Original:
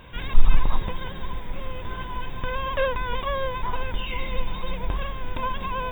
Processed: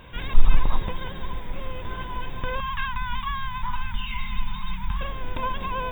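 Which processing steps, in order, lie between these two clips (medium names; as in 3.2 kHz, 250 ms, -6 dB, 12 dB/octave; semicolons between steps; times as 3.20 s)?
2.60–5.01 s: Chebyshev band-stop 230–840 Hz, order 5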